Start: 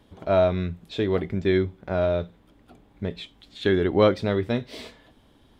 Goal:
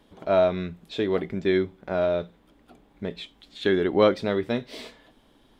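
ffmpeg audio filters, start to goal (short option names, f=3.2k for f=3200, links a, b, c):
-af "equalizer=f=86:w=1.2:g=-11"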